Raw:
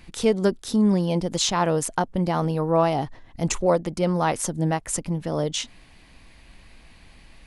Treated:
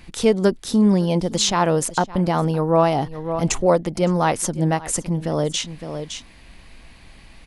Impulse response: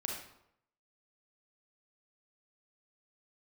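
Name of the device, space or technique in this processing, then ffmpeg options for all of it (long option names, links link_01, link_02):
ducked delay: -filter_complex "[0:a]asplit=3[link_01][link_02][link_03];[link_02]adelay=562,volume=-8dB[link_04];[link_03]apad=whole_len=354134[link_05];[link_04][link_05]sidechaincompress=threshold=-36dB:ratio=8:attack=12:release=165[link_06];[link_01][link_06]amix=inputs=2:normalize=0,volume=3.5dB"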